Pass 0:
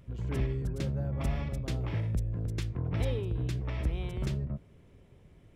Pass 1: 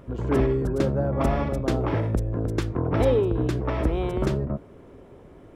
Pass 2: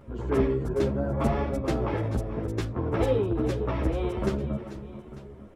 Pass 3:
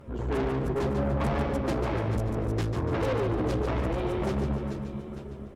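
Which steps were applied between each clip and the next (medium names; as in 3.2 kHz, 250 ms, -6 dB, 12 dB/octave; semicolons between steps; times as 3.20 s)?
high-order bell 610 Hz +11 dB 3 oct; trim +5 dB
on a send: multi-tap echo 434/443/896 ms -15.5/-14.5/-17 dB; on the sum: three-phase chorus
valve stage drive 30 dB, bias 0.5; feedback delay 145 ms, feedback 40%, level -6.5 dB; trim +4.5 dB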